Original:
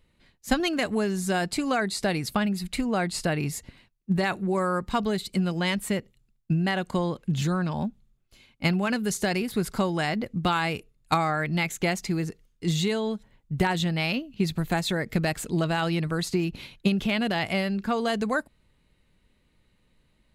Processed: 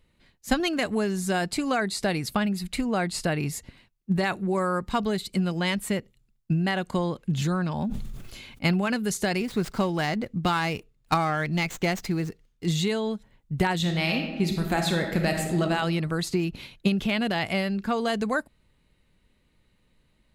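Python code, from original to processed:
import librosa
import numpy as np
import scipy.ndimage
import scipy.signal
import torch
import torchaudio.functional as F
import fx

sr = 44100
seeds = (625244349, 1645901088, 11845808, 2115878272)

y = fx.sustainer(x, sr, db_per_s=31.0, at=(7.71, 8.81))
y = fx.running_max(y, sr, window=3, at=(9.4, 12.66))
y = fx.reverb_throw(y, sr, start_s=13.76, length_s=1.86, rt60_s=1.2, drr_db=3.0)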